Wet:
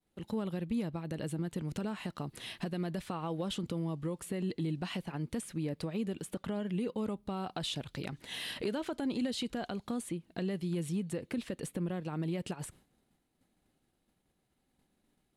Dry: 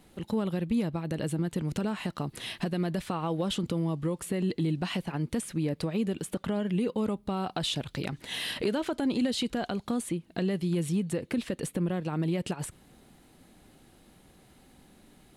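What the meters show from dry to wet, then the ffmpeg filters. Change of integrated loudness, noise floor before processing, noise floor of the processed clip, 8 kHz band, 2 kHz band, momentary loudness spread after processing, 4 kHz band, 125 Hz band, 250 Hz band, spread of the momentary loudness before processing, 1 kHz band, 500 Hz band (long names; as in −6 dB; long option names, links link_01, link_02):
−6.0 dB, −59 dBFS, −78 dBFS, −6.0 dB, −6.0 dB, 5 LU, −6.0 dB, −6.0 dB, −6.0 dB, 5 LU, −6.0 dB, −6.0 dB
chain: -af "agate=range=-33dB:threshold=-47dB:ratio=3:detection=peak,volume=-6dB"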